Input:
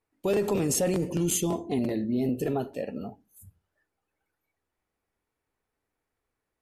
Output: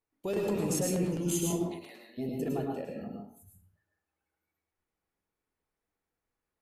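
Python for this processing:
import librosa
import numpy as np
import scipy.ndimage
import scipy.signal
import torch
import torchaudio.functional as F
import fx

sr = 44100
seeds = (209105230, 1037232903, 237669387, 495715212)

y = fx.highpass(x, sr, hz=1300.0, slope=12, at=(1.67, 2.17), fade=0.02)
y = fx.rev_plate(y, sr, seeds[0], rt60_s=0.5, hf_ratio=0.65, predelay_ms=95, drr_db=0.5)
y = y * librosa.db_to_amplitude(-7.5)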